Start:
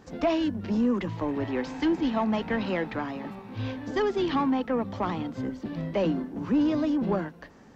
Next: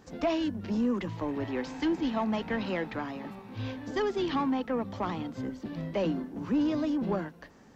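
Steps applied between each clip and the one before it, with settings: high shelf 4900 Hz +5 dB; gain -3.5 dB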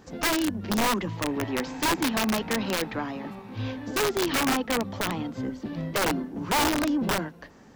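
wrapped overs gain 23 dB; gain +4 dB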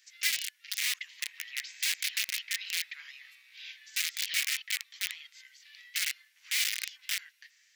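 elliptic high-pass 2000 Hz, stop band 80 dB

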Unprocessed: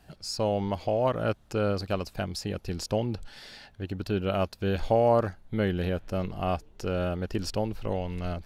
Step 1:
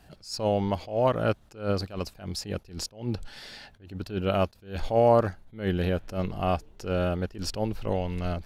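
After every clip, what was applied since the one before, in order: attack slew limiter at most 160 dB/s; gain +2.5 dB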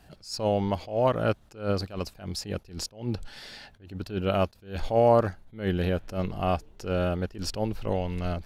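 nothing audible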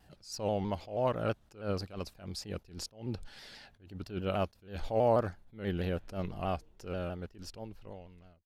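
ending faded out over 2.14 s; shaped vibrato saw down 6.2 Hz, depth 100 cents; gain -7 dB

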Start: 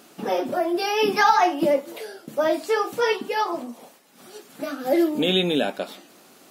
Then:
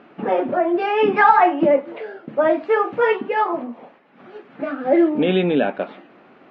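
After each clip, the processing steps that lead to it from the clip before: LPF 2400 Hz 24 dB/oct; gain +4.5 dB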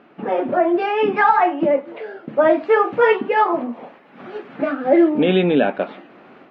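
AGC gain up to 11.5 dB; gain -2.5 dB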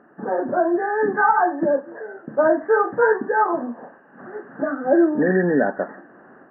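nonlinear frequency compression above 1500 Hz 4:1; gain -2.5 dB

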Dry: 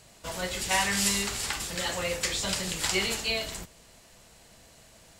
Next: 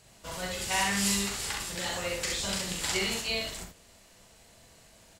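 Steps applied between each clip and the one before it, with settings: tapped delay 40/66 ms -4.5/-3.5 dB; gain -4.5 dB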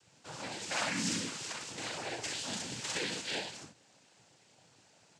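noise vocoder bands 8; gain -5.5 dB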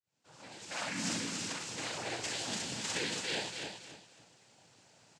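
opening faded in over 1.40 s; feedback echo 0.28 s, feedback 26%, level -6 dB

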